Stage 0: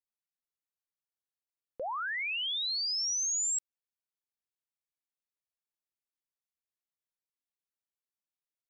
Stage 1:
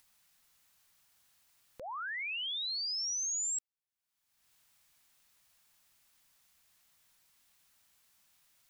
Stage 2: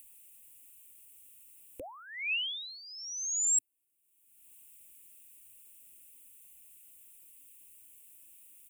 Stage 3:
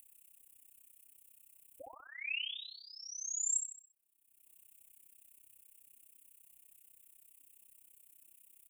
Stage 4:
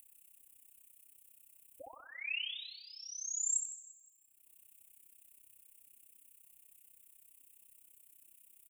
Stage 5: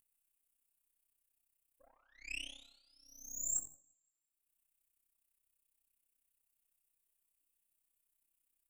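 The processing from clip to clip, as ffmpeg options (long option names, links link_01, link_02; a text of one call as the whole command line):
ffmpeg -i in.wav -af "equalizer=frequency=400:width_type=o:width=1.2:gain=-10.5,acompressor=mode=upward:threshold=-43dB:ratio=2.5,volume=-3.5dB" out.wav
ffmpeg -i in.wav -af "firequalizer=gain_entry='entry(110,0);entry(170,-24);entry(280,9);entry(410,1);entry(970,-15);entry(1500,-19);entry(2600,2);entry(4600,-20);entry(8400,9)':delay=0.05:min_phase=1,volume=6dB" out.wav
ffmpeg -i in.wav -af "aecho=1:1:68|136|204|272|340:0.398|0.159|0.0637|0.0255|0.0102,tremolo=f=32:d=0.919,volume=-2.5dB" out.wav
ffmpeg -i in.wav -af "aecho=1:1:171|342|513|684:0.15|0.0613|0.0252|0.0103" out.wav
ffmpeg -i in.wav -af "aeval=exprs='0.075*(cos(1*acos(clip(val(0)/0.075,-1,1)))-cos(1*PI/2))+0.0075*(cos(3*acos(clip(val(0)/0.075,-1,1)))-cos(3*PI/2))+0.00188*(cos(5*acos(clip(val(0)/0.075,-1,1)))-cos(5*PI/2))+0.00376*(cos(6*acos(clip(val(0)/0.075,-1,1)))-cos(6*PI/2))+0.0075*(cos(7*acos(clip(val(0)/0.075,-1,1)))-cos(7*PI/2))':channel_layout=same,flanger=delay=20:depth=7.9:speed=0.27,volume=1.5dB" out.wav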